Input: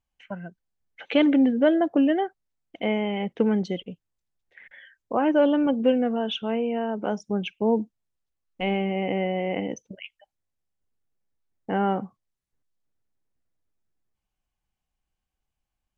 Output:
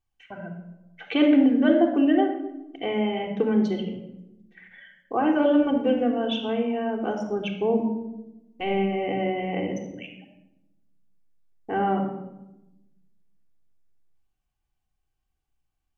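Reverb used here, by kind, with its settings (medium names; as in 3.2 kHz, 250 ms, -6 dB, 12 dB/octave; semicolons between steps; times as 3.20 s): simulated room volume 3700 m³, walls furnished, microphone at 3.6 m; trim -3 dB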